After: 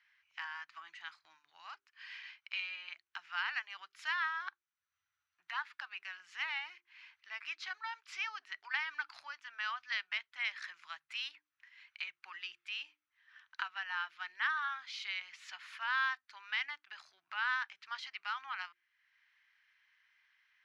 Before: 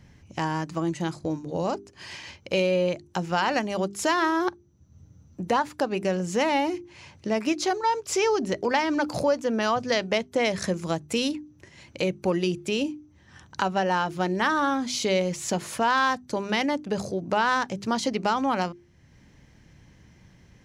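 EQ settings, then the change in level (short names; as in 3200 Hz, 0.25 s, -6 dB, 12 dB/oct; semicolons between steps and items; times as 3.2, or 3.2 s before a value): inverse Chebyshev high-pass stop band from 550 Hz, stop band 50 dB; air absorption 350 m; -2.0 dB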